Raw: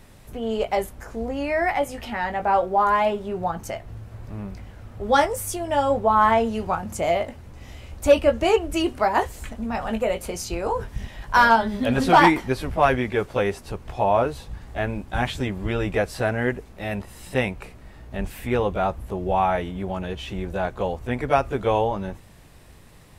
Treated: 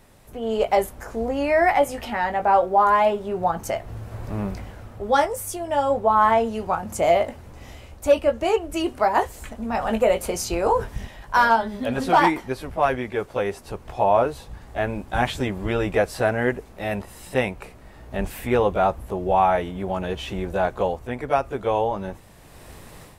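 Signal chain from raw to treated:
parametric band 690 Hz +5.5 dB 2.7 octaves
automatic gain control
high-shelf EQ 5,500 Hz +5.5 dB
level −6.5 dB

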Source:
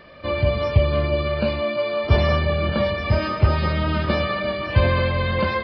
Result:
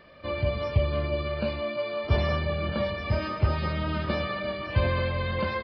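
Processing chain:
single-tap delay 71 ms −20.5 dB
level −7 dB

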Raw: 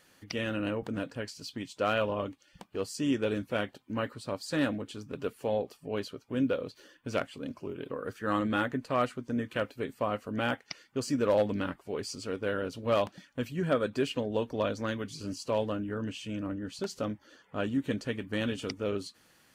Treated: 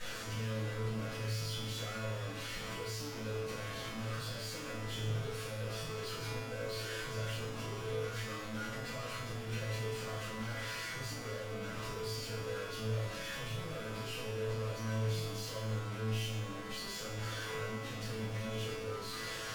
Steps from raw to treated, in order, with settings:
sign of each sample alone
low-pass filter 5,700 Hz 12 dB per octave
parametric band 210 Hz −6.5 dB 1.6 octaves
brickwall limiter −34.5 dBFS, peak gain reduction 6 dB
asymmetric clip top −53.5 dBFS, bottom −37.5 dBFS
tuned comb filter 110 Hz, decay 1 s, harmonics all, mix 90%
convolution reverb RT60 0.45 s, pre-delay 3 ms, DRR −9 dB
level +4 dB

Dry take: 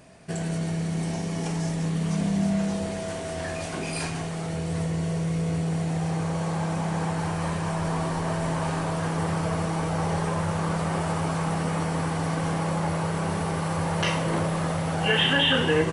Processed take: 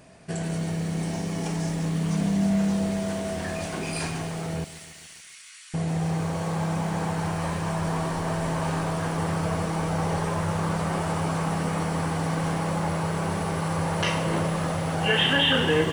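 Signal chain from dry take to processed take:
0:04.64–0:05.74: Bessel high-pass filter 2,500 Hz, order 8
feedback echo at a low word length 142 ms, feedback 80%, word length 7 bits, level −15 dB

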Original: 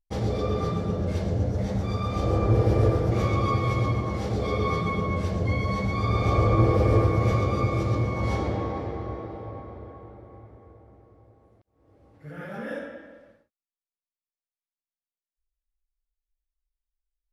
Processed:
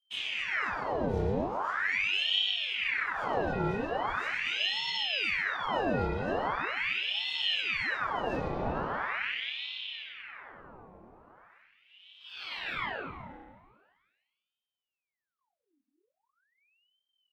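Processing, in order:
downward compressor, threshold −29 dBFS, peak gain reduction 13.5 dB
multi-voice chorus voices 2, 0.87 Hz, delay 21 ms, depth 1.5 ms
spring reverb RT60 1.5 s, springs 31/50 ms, chirp 25 ms, DRR −6 dB
ring modulator whose carrier an LFO sweeps 1,700 Hz, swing 85%, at 0.41 Hz
level −1.5 dB

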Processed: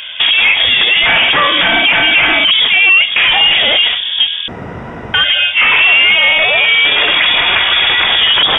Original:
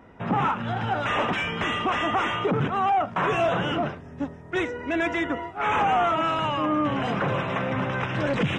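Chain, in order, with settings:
0:06.38–0:08.07: parametric band 380 Hz −14 dB 1.5 octaves
downward compressor 8 to 1, threshold −28 dBFS, peak gain reduction 9.5 dB
voice inversion scrambler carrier 3,500 Hz
0:04.48–0:05.14: fill with room tone
boost into a limiter +25 dB
level −1 dB

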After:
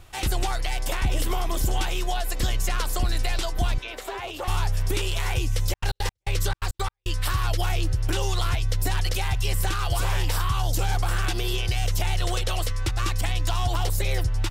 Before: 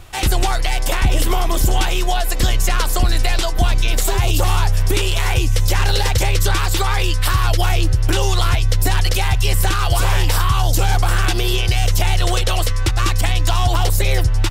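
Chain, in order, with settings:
0:03.78–0:04.48: three-way crossover with the lows and the highs turned down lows −22 dB, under 310 Hz, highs −14 dB, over 3,300 Hz
0:05.64–0:07.25: gate pattern "xx.x.x..x" 170 BPM −60 dB
level −8.5 dB

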